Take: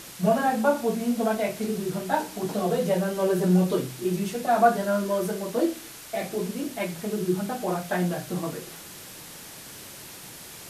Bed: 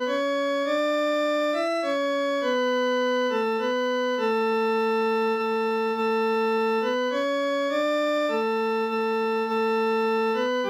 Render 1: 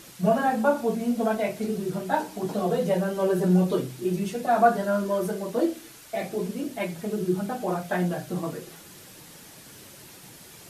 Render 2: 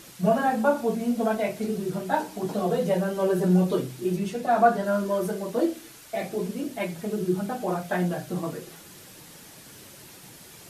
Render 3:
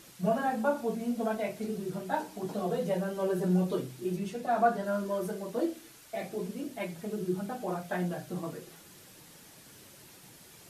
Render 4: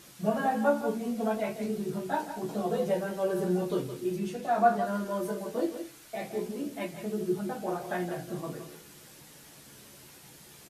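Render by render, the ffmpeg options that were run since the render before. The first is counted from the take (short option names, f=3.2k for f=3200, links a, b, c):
-af "afftdn=nr=6:nf=-43"
-filter_complex "[0:a]asettb=1/sr,asplit=3[a][b][c];[a]atrim=end=4.174[d];[b]atrim=start=4.17:end=4.86,asetpts=PTS-STARTPTS,afade=t=in:d=0.004:c=qsin,afade=t=out:st=0.686:d=0.004:c=qsin,highshelf=f=8.2k:g=-5.5[e];[c]atrim=start=4.856[f];[d][e]acrossfade=d=0.004:c1=hsin:c2=qsin[g];[g][f]acrossfade=d=0.004:c1=qsin:c2=hsin"
-af "volume=-6.5dB"
-filter_complex "[0:a]asplit=2[a][b];[b]adelay=14,volume=-5.5dB[c];[a][c]amix=inputs=2:normalize=0,asplit=2[d][e];[e]aecho=0:1:167:0.316[f];[d][f]amix=inputs=2:normalize=0"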